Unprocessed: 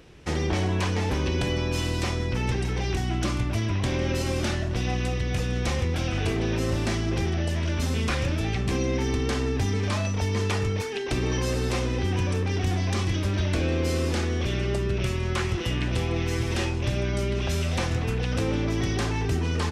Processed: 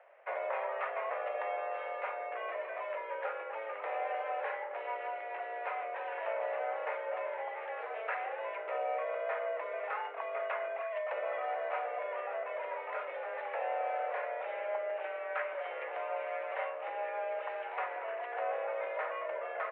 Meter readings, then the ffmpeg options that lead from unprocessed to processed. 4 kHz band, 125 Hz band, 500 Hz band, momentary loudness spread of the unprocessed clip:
-23.5 dB, under -40 dB, -5.0 dB, 2 LU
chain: -af "highpass=f=320:t=q:w=0.5412,highpass=f=320:t=q:w=1.307,lowpass=f=2k:t=q:w=0.5176,lowpass=f=2k:t=q:w=0.7071,lowpass=f=2k:t=q:w=1.932,afreqshift=220,volume=-4.5dB"

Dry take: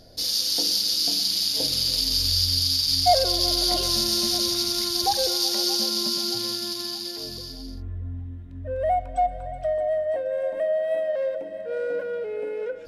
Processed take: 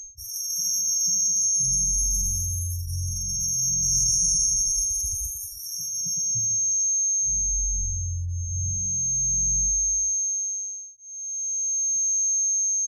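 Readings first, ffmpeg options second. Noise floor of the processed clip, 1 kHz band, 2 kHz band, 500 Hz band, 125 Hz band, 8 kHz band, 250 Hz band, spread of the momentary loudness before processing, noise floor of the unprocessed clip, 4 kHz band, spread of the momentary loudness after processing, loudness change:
-38 dBFS, under -40 dB, under -40 dB, under -40 dB, +4.0 dB, +13.5 dB, under -10 dB, 13 LU, -37 dBFS, -13.5 dB, 10 LU, +0.5 dB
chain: -filter_complex "[0:a]afftdn=nr=34:nf=-33,lowshelf=f=83:g=9.5,aecho=1:1:311:0.15,aeval=exprs='val(0)+0.0398*sin(2*PI*6400*n/s)':c=same,acrossover=split=190[a][b];[a]asoftclip=type=hard:threshold=-35dB[c];[c][b]amix=inputs=2:normalize=0,afftfilt=real='re*(1-between(b*sr/4096,190,5500))':imag='im*(1-between(b*sr/4096,190,5500))':win_size=4096:overlap=0.75,asplit=2[d][e];[e]afreqshift=0.37[f];[d][f]amix=inputs=2:normalize=1,volume=8dB"

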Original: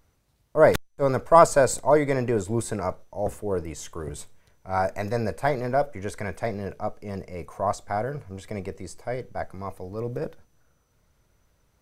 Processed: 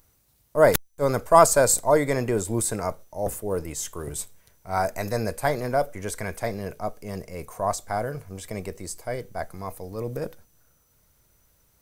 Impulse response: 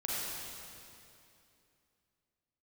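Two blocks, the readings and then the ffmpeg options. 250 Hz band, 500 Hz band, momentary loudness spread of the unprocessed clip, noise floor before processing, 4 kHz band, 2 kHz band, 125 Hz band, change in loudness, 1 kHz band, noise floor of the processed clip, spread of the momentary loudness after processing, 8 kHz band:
-0.5 dB, -0.5 dB, 17 LU, -67 dBFS, +4.5 dB, +0.5 dB, -0.5 dB, +0.5 dB, 0.0 dB, -64 dBFS, 17 LU, +9.0 dB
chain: -af "aemphasis=mode=production:type=50fm"

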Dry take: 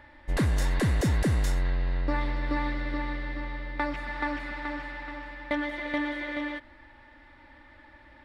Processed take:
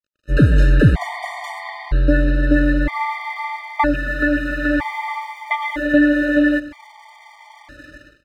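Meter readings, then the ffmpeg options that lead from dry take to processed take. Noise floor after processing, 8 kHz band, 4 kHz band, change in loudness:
-49 dBFS, n/a, +6.5 dB, +12.0 dB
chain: -filter_complex "[0:a]acrossover=split=3500[a][b];[b]acompressor=threshold=-58dB:ratio=4:attack=1:release=60[c];[a][c]amix=inputs=2:normalize=0,highpass=f=41:w=0.5412,highpass=f=41:w=1.3066,lowshelf=f=95:g=5.5,aecho=1:1:6.9:0.56,dynaudnorm=f=120:g=5:m=16dB,aeval=exprs='sgn(val(0))*max(abs(val(0))-0.00841,0)':c=same,aecho=1:1:95|190|285|380:0.133|0.0653|0.032|0.0157,afftfilt=real='re*gt(sin(2*PI*0.52*pts/sr)*(1-2*mod(floor(b*sr/1024/610),2)),0)':imag='im*gt(sin(2*PI*0.52*pts/sr)*(1-2*mod(floor(b*sr/1024/610),2)),0)':win_size=1024:overlap=0.75"

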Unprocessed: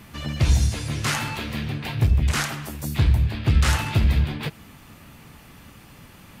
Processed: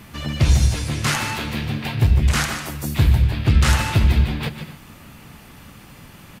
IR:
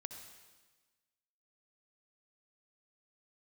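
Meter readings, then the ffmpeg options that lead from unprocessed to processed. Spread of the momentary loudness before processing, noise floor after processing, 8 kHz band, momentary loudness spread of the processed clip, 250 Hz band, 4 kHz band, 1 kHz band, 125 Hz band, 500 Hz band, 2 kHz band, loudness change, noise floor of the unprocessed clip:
9 LU, -44 dBFS, +3.5 dB, 10 LU, +4.0 dB, +3.5 dB, +4.0 dB, +3.5 dB, +3.5 dB, +3.5 dB, +3.5 dB, -48 dBFS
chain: -filter_complex "[0:a]asplit=2[a][b];[b]aecho=1:1:5.5:0.85[c];[1:a]atrim=start_sample=2205,atrim=end_sample=6174,adelay=148[d];[c][d]afir=irnorm=-1:irlink=0,volume=-6.5dB[e];[a][e]amix=inputs=2:normalize=0,volume=3dB"

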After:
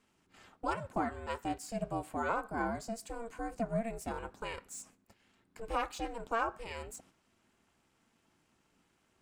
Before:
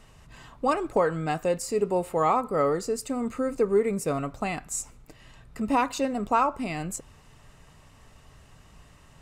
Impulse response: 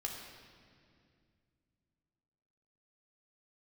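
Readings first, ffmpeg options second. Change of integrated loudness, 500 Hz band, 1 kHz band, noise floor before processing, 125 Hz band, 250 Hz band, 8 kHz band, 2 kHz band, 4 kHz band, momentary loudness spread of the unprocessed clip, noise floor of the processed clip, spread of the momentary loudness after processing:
-11.0 dB, -13.5 dB, -10.0 dB, -54 dBFS, -9.5 dB, -11.0 dB, -12.5 dB, -5.0 dB, -7.5 dB, 9 LU, -74 dBFS, 10 LU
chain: -filter_complex "[0:a]acrossover=split=4100[a][b];[a]lowshelf=f=290:g=-8[c];[b]asoftclip=type=tanh:threshold=-34dB[d];[c][d]amix=inputs=2:normalize=0,aeval=exprs='val(0)*sin(2*PI*230*n/s)':c=same,agate=range=-7dB:threshold=-54dB:ratio=16:detection=peak,volume=-6dB"

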